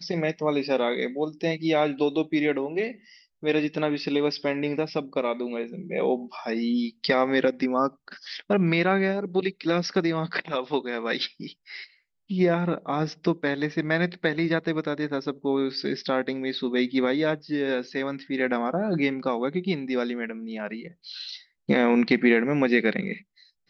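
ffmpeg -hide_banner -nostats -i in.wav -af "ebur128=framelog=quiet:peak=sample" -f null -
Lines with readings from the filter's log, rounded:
Integrated loudness:
  I:         -25.9 LUFS
  Threshold: -36.3 LUFS
Loudness range:
  LRA:         3.3 LU
  Threshold: -46.5 LUFS
  LRA low:   -28.0 LUFS
  LRA high:  -24.7 LUFS
Sample peak:
  Peak:       -7.4 dBFS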